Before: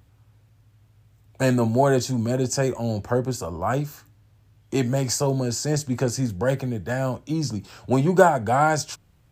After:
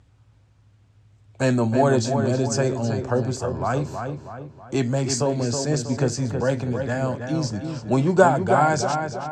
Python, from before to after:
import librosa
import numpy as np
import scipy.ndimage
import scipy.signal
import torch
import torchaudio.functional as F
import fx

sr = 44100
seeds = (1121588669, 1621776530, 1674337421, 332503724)

p1 = scipy.signal.sosfilt(scipy.signal.butter(4, 8500.0, 'lowpass', fs=sr, output='sos'), x)
y = p1 + fx.echo_filtered(p1, sr, ms=321, feedback_pct=47, hz=3000.0, wet_db=-6.0, dry=0)